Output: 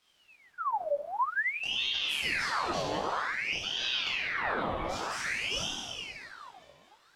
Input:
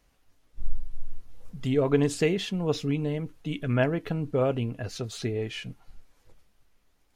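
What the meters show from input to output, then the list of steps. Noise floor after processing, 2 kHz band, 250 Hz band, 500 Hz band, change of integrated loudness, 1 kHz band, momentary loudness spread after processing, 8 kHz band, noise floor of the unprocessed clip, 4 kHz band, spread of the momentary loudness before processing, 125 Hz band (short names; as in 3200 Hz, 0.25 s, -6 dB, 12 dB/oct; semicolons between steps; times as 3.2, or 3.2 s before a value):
-65 dBFS, +8.0 dB, -15.5 dB, -9.5 dB, -3.0 dB, +8.5 dB, 10 LU, +1.0 dB, -67 dBFS, +9.0 dB, 18 LU, -18.5 dB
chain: octaver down 2 oct, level +3 dB; low shelf 430 Hz -11 dB; reverse; compressor, threshold -32 dBFS, peak gain reduction 10 dB; reverse; high shelf 5000 Hz -7.5 dB; thinning echo 0.212 s, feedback 81%, high-pass 770 Hz, level -21 dB; plate-style reverb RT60 2.4 s, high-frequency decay 0.8×, DRR -3.5 dB; chorus 0.62 Hz, delay 19.5 ms, depth 2.9 ms; in parallel at -3 dB: limiter -31.5 dBFS, peak gain reduction 9 dB; on the sum: ring modulator with a swept carrier 1900 Hz, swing 70%, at 0.52 Hz; gain +2.5 dB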